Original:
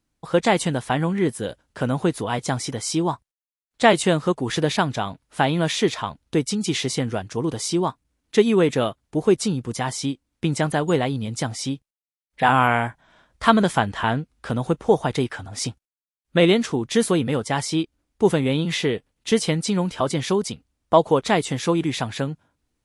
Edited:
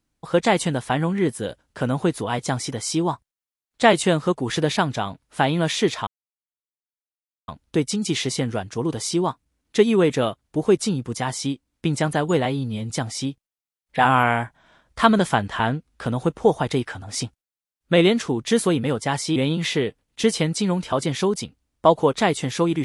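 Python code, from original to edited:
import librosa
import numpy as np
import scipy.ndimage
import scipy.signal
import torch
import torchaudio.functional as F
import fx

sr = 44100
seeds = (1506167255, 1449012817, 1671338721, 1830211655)

y = fx.edit(x, sr, fx.insert_silence(at_s=6.07, length_s=1.41),
    fx.stretch_span(start_s=11.04, length_s=0.3, factor=1.5),
    fx.cut(start_s=17.8, length_s=0.64), tone=tone)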